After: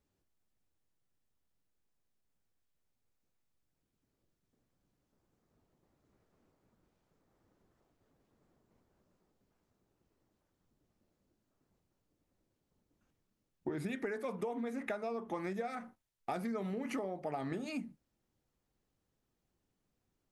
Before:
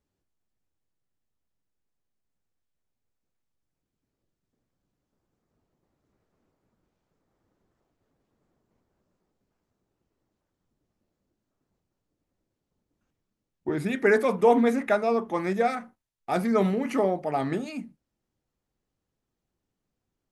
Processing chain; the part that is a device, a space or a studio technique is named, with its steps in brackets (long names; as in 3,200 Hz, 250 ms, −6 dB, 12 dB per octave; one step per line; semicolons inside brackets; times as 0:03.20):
serial compression, leveller first (downward compressor 2 to 1, threshold −25 dBFS, peak gain reduction 6.5 dB; downward compressor 10 to 1, threshold −35 dBFS, peak gain reduction 15.5 dB)